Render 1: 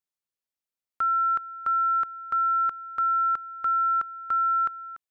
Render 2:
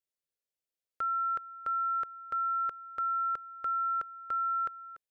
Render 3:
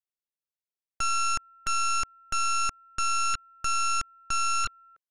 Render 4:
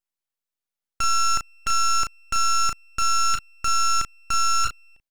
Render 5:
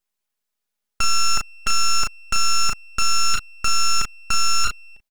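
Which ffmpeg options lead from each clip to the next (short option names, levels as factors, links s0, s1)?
-af "equalizer=f=250:t=o:w=1:g=-4,equalizer=f=500:t=o:w=1:g=8,equalizer=f=1000:t=o:w=1:g=-9,volume=0.708"
-af "afwtdn=0.02,aeval=exprs='0.0473*(cos(1*acos(clip(val(0)/0.0473,-1,1)))-cos(1*PI/2))+0.0211*(cos(4*acos(clip(val(0)/0.0473,-1,1)))-cos(4*PI/2))+0.0188*(cos(7*acos(clip(val(0)/0.0473,-1,1)))-cos(7*PI/2))':c=same,volume=1.26"
-filter_complex "[0:a]asplit=2[s0][s1];[s1]adelay=35,volume=0.473[s2];[s0][s2]amix=inputs=2:normalize=0,aeval=exprs='abs(val(0))':c=same,volume=1.68"
-filter_complex "[0:a]aecho=1:1:4.8:0.54,asplit=2[s0][s1];[s1]alimiter=limit=0.106:level=0:latency=1:release=23,volume=0.944[s2];[s0][s2]amix=inputs=2:normalize=0"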